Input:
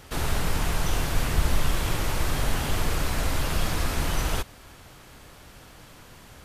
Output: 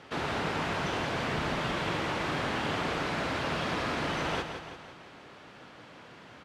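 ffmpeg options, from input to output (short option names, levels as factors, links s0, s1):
-af "highpass=180,lowpass=3400,aecho=1:1:168|336|504|672|840|1008:0.398|0.207|0.108|0.056|0.0291|0.0151"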